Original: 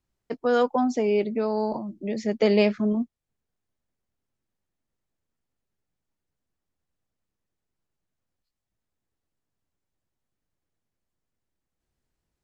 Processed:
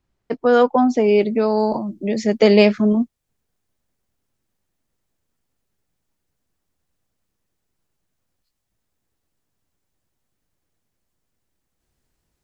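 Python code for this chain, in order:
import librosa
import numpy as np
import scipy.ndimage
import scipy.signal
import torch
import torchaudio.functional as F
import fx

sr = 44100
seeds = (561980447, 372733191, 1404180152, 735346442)

y = fx.high_shelf(x, sr, hz=5500.0, db=fx.steps((0.0, -10.0), (1.07, 4.0)))
y = F.gain(torch.from_numpy(y), 7.5).numpy()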